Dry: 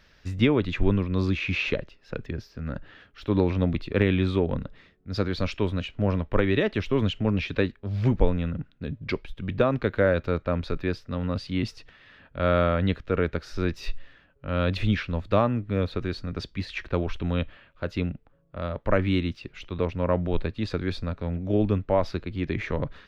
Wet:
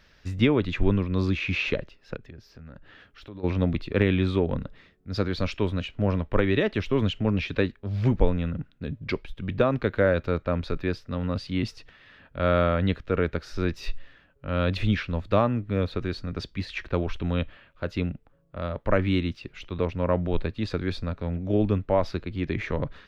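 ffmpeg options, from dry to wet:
-filter_complex "[0:a]asplit=3[a][b][c];[a]afade=t=out:st=2.15:d=0.02[d];[b]acompressor=threshold=-46dB:ratio=2.5:attack=3.2:release=140:knee=1:detection=peak,afade=t=in:st=2.15:d=0.02,afade=t=out:st=3.43:d=0.02[e];[c]afade=t=in:st=3.43:d=0.02[f];[d][e][f]amix=inputs=3:normalize=0"

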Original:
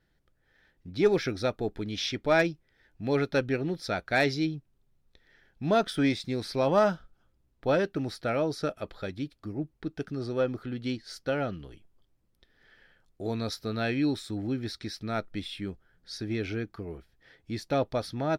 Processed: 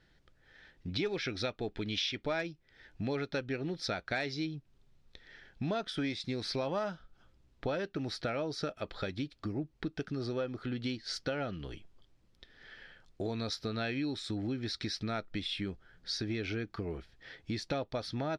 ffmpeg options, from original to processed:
-filter_complex "[0:a]asettb=1/sr,asplit=3[a][b][c];[a]atrim=end=0.894[d];[b]atrim=start=0.89:end=2.22,asetpts=PTS-STARTPTS,afade=t=in:d=0.004:c=qsin,afade=t=out:st=1.326:d=0.004:c=qsin,equalizer=f=2.8k:w=1.3:g=5.5[e];[c]atrim=start=2.216[f];[d][e]acrossfade=d=0.004:c1=hsin:c2=qsin[g];[g][f]acrossfade=d=0.004:c1=qsin:c2=hsin,lowpass=5.1k,highshelf=f=2.4k:g=7.5,acompressor=threshold=-38dB:ratio=5,volume=4.5dB"

